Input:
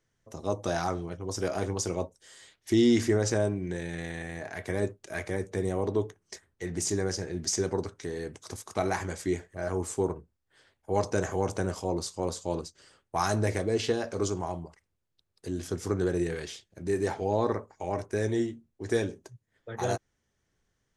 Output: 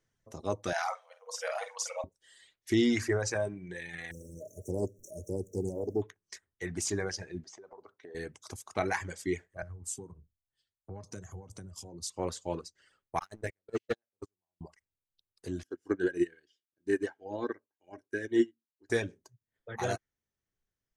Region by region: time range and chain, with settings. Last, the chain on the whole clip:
0:00.73–0:02.04: linear-phase brick-wall high-pass 470 Hz + double-tracking delay 49 ms −5 dB
0:04.11–0:06.02: converter with a step at zero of −41.5 dBFS + linear-phase brick-wall band-stop 640–5,500 Hz + highs frequency-modulated by the lows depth 0.22 ms
0:07.44–0:08.15: resonant band-pass 790 Hz, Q 0.81 + downward compressor 16 to 1, threshold −39 dBFS
0:09.62–0:12.10: bass and treble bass +13 dB, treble +10 dB + downward compressor, threshold −37 dBFS + multiband upward and downward expander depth 100%
0:13.19–0:14.61: noise gate −24 dBFS, range −43 dB + leveller curve on the samples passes 2
0:15.63–0:18.90: low-shelf EQ 300 Hz −6 dB + hollow resonant body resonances 300/1,600/2,900 Hz, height 14 dB, ringing for 25 ms + expander for the loud parts 2.5 to 1, over −34 dBFS
whole clip: reverb reduction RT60 1.9 s; dynamic equaliser 2,000 Hz, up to +7 dB, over −52 dBFS, Q 1.2; level −3 dB

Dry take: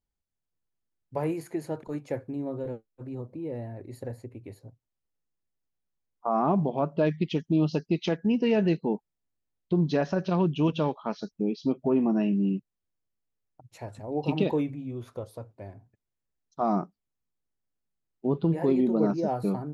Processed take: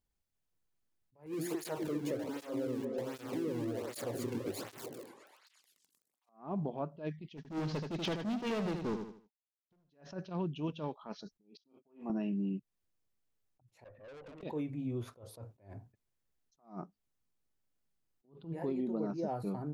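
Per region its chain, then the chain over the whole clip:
0:01.26–0:06.29: converter with a step at zero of −35 dBFS + echo through a band-pass that steps 125 ms, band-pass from 210 Hz, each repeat 0.7 octaves, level 0 dB + through-zero flanger with one copy inverted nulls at 1.3 Hz, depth 1.7 ms
0:07.37–0:09.90: variable-slope delta modulation 32 kbit/s + hard clipping −28 dBFS + repeating echo 78 ms, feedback 30%, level −8 dB
0:11.57–0:12.10: noise gate −42 dBFS, range −27 dB + high-pass filter 620 Hz 6 dB per octave + double-tracking delay 34 ms −10 dB
0:13.84–0:14.43: formant resonators in series e + tube saturation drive 51 dB, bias 0.35 + level that may fall only so fast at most 110 dB per second
whole clip: downward compressor 6 to 1, threshold −35 dBFS; level that may rise only so fast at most 180 dB per second; level +2 dB

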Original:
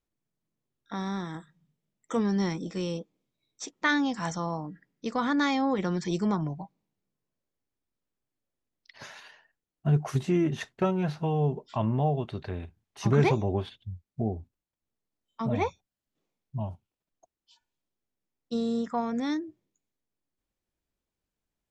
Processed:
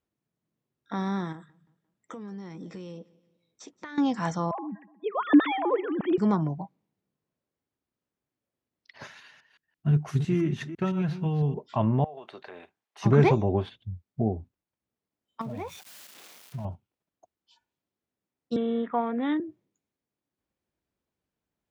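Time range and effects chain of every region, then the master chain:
0:01.32–0:03.98: downward compressor 10 to 1, threshold −40 dBFS + repeating echo 174 ms, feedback 43%, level −22 dB
0:04.51–0:06.18: three sine waves on the formant tracks + feedback echo with a low-pass in the loop 122 ms, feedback 58%, low-pass 1,600 Hz, level −19.5 dB
0:09.07–0:11.54: delay that plays each chunk backwards 168 ms, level −10 dB + parametric band 640 Hz −12 dB 1.8 octaves
0:12.04–0:13.02: high-pass filter 600 Hz + downward compressor 10 to 1, threshold −40 dBFS
0:15.41–0:16.65: spike at every zero crossing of −28 dBFS + high-shelf EQ 5,600 Hz −9 dB + downward compressor 12 to 1, threshold −34 dBFS
0:18.56–0:19.40: high-pass filter 240 Hz 24 dB per octave + bad sample-rate conversion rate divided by 6×, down none, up filtered
whole clip: high-pass filter 77 Hz; high-shelf EQ 3,600 Hz −10 dB; level +3.5 dB

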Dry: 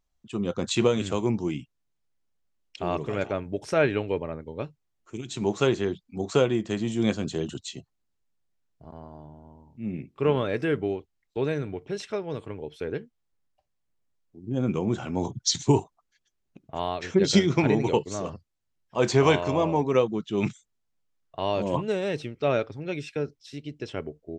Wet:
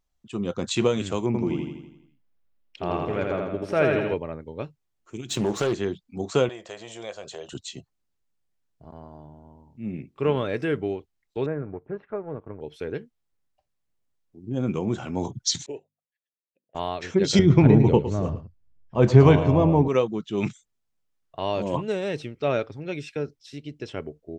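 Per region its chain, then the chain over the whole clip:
0:01.26–0:04.14: parametric band 7,200 Hz −12.5 dB 1.2 octaves + repeating echo 82 ms, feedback 54%, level −3 dB
0:05.29–0:05.73: leveller curve on the samples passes 2 + downward compressor, threshold −20 dBFS + highs frequency-modulated by the lows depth 0.24 ms
0:06.49–0:07.53: low shelf with overshoot 380 Hz −13.5 dB, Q 3 + downward compressor 2 to 1, threshold −37 dBFS
0:11.46–0:12.61: mu-law and A-law mismatch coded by A + low-pass filter 1,600 Hz 24 dB per octave + upward compression, threshold −47 dBFS
0:15.66–0:16.75: formant filter e + mains-hum notches 50/100/150/200/250 Hz + expander for the loud parts, over −48 dBFS
0:17.39–0:19.88: RIAA equalisation playback + single-tap delay 110 ms −13 dB
whole clip: no processing

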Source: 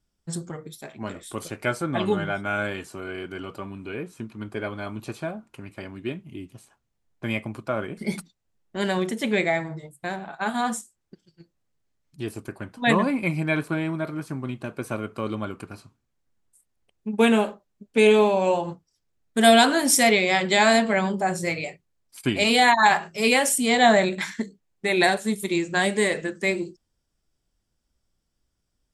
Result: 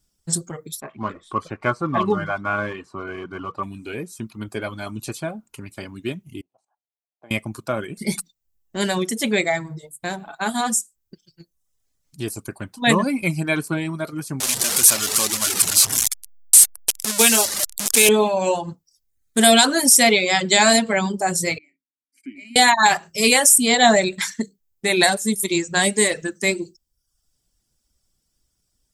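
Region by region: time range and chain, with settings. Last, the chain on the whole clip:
0:00.80–0:03.63: one scale factor per block 5 bits + low-pass filter 2,000 Hz + parametric band 1,100 Hz +14.5 dB 0.29 octaves
0:06.41–0:07.31: output level in coarse steps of 11 dB + resonant band-pass 720 Hz, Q 3.8
0:14.40–0:18.09: linear delta modulator 64 kbit/s, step −24 dBFS + spectral tilt +3 dB per octave
0:21.58–0:22.56: downward compressor 2.5 to 1, threshold −30 dBFS + formant filter i + phaser with its sweep stopped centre 700 Hz, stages 8
whole clip: reverb reduction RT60 0.67 s; bass and treble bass +2 dB, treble +12 dB; boost into a limiter +3.5 dB; level −1 dB

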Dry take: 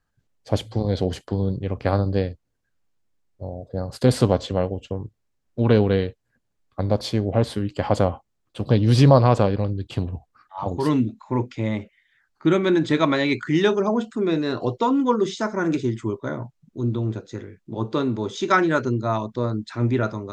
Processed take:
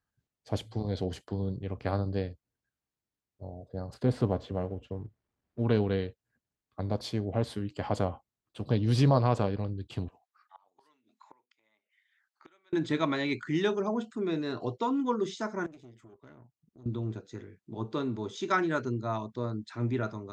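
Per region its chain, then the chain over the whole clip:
0:03.94–0:05.69: mu-law and A-law mismatch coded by mu + low-pass filter 1,300 Hz 6 dB per octave
0:10.08–0:12.73: high-pass filter 830 Hz + gate with flip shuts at −29 dBFS, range −28 dB
0:15.66–0:16.86: downward compressor 2.5 to 1, threshold −42 dBFS + tube saturation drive 35 dB, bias 0.8
whole clip: high-pass filter 48 Hz; notch filter 530 Hz, Q 12; level −9 dB

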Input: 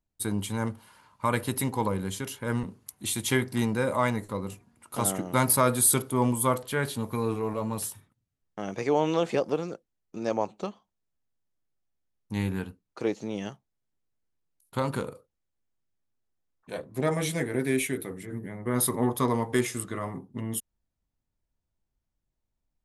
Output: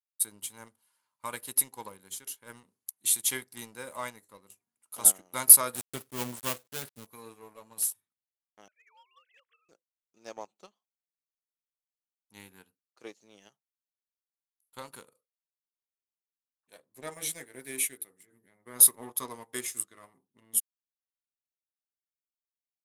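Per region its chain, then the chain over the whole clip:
0:05.75–0:07.07: gap after every zero crossing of 0.24 ms + low-shelf EQ 230 Hz +9.5 dB
0:08.68–0:09.69: three sine waves on the formant tracks + high-pass filter 1,100 Hz 24 dB per octave
whole clip: RIAA equalisation recording; leveller curve on the samples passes 1; expander for the loud parts 1.5 to 1, over −38 dBFS; level −5.5 dB

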